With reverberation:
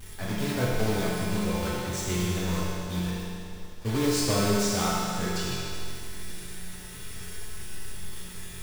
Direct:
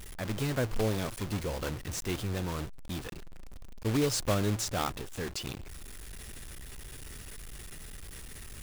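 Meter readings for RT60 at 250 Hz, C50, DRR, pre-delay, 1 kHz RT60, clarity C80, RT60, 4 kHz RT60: 2.5 s, -3.0 dB, -8.0 dB, 5 ms, 2.5 s, -1.0 dB, 2.5 s, 2.4 s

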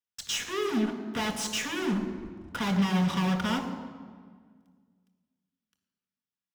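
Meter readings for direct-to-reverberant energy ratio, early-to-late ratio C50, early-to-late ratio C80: 2.5 dB, 7.5 dB, 9.0 dB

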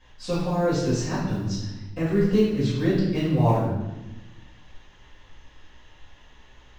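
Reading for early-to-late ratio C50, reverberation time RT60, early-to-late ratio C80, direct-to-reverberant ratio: 0.5 dB, 1.0 s, 3.5 dB, -14.5 dB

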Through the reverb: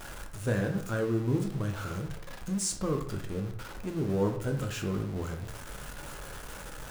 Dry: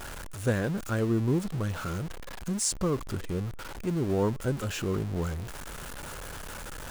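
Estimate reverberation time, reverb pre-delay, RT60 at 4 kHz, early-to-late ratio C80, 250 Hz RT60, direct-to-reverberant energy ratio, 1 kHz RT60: 0.65 s, 8 ms, 0.40 s, 12.0 dB, 0.80 s, 3.5 dB, 0.60 s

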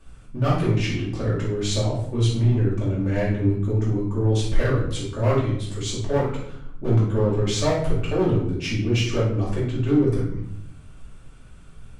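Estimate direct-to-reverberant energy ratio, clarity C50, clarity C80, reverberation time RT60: -8.0 dB, 2.0 dB, 7.0 dB, 0.70 s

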